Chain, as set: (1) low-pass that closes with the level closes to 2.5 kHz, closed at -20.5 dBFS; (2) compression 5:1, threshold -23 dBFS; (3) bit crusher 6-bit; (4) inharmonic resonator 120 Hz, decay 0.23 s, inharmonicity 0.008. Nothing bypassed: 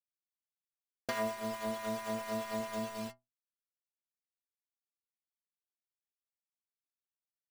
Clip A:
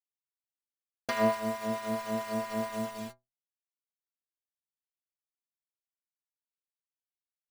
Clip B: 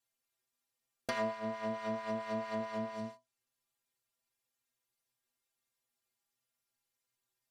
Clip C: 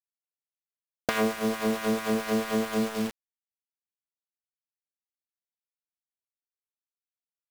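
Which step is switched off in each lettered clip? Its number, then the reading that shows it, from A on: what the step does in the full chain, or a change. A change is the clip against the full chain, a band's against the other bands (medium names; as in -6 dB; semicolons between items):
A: 2, mean gain reduction 4.0 dB; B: 3, distortion -13 dB; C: 4, 250 Hz band +4.0 dB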